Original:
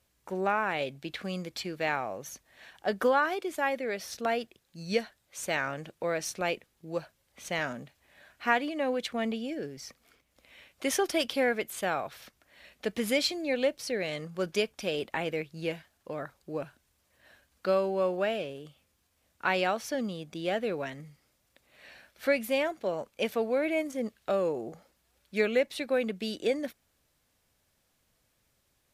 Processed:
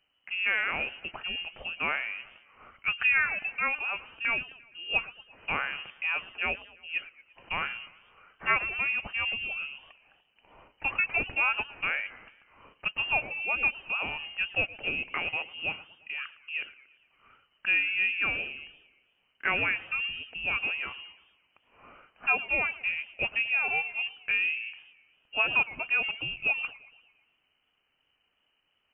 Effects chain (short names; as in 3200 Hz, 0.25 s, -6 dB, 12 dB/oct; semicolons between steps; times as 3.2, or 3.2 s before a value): inverted band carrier 3000 Hz; warbling echo 0.115 s, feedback 55%, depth 198 cents, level -19 dB